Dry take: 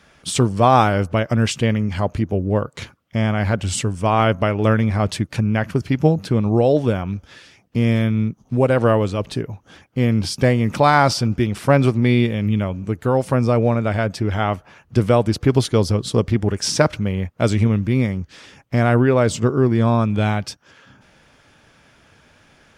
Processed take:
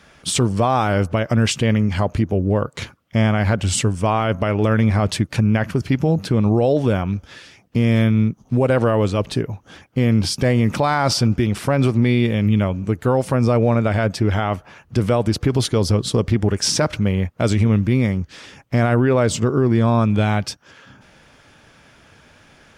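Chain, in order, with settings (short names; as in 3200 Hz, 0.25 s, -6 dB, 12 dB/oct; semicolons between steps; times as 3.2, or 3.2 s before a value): limiter -11.5 dBFS, peak gain reduction 9 dB; gain +3 dB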